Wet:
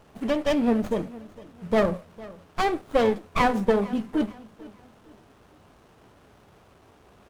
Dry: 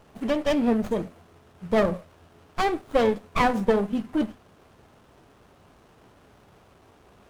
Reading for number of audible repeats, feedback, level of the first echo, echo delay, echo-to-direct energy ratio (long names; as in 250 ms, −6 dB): 2, 33%, −20.0 dB, 455 ms, −19.5 dB